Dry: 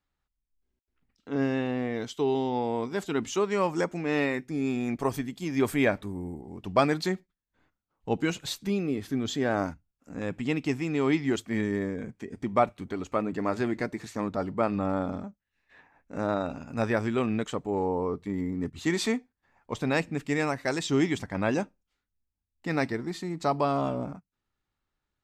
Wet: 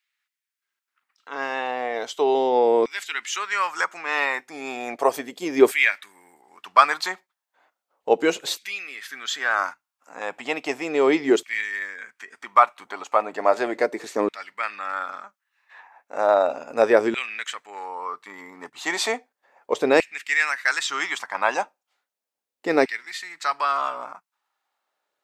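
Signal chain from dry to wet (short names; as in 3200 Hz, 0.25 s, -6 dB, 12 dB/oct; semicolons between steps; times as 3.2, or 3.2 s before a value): LFO high-pass saw down 0.35 Hz 390–2300 Hz; gain +6.5 dB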